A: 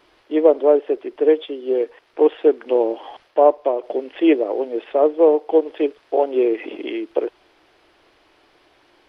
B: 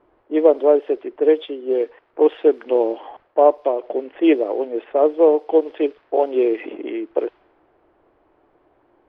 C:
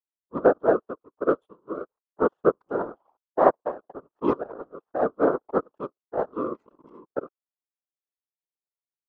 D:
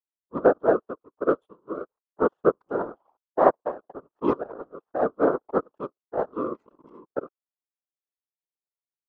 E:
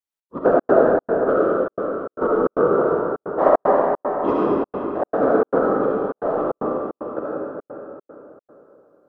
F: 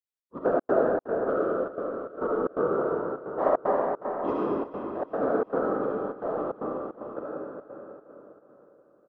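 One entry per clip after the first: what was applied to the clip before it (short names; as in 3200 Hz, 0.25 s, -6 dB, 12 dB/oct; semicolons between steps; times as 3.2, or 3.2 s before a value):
low-pass opened by the level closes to 940 Hz, open at -11.5 dBFS
power-law curve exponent 2; resonant high shelf 1600 Hz -10 dB, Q 3; whisperiser; gain -3 dB
nothing audible
reverb RT60 3.4 s, pre-delay 25 ms, DRR -7 dB; step gate "xx.xxx.xxx.xxxx" 152 bpm -60 dB
feedback echo 0.363 s, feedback 57%, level -15.5 dB; gain -8.5 dB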